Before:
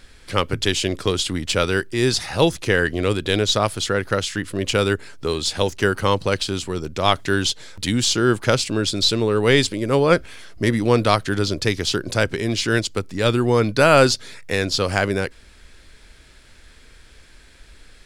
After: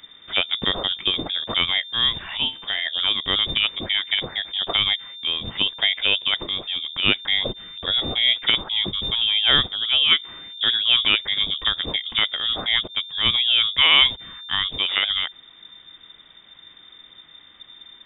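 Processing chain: 2.37–2.87 resonator 71 Hz, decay 0.32 s, harmonics all, mix 70%; inverted band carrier 3600 Hz; gain -2 dB

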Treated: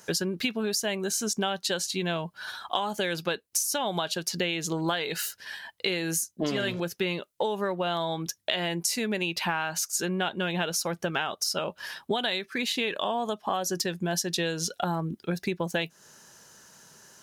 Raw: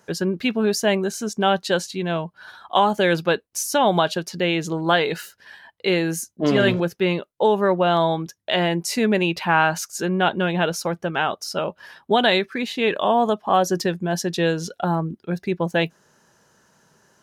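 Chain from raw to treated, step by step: high shelf 2600 Hz +12 dB; compressor 12:1, threshold -25 dBFS, peak gain reduction 16 dB

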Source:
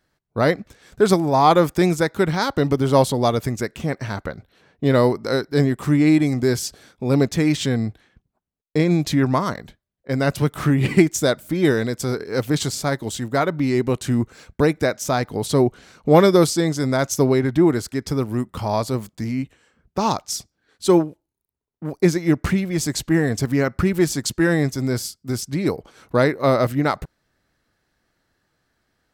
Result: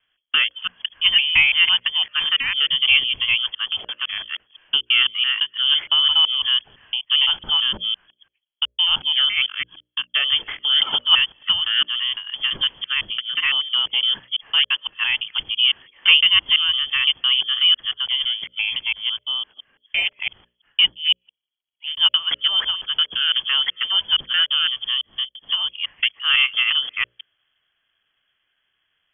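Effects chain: local time reversal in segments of 0.169 s; inverted band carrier 3300 Hz; notches 60/120/180/240/300/360/420/480/540/600 Hz; gain -1 dB

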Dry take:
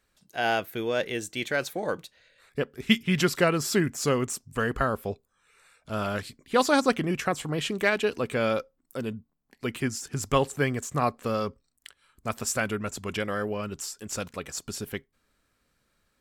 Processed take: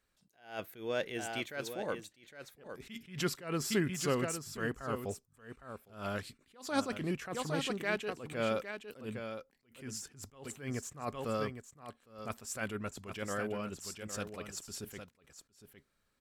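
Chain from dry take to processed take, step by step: on a send: echo 0.81 s -9.5 dB; on the sum: attack slew limiter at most 140 dB/s; gain -7 dB

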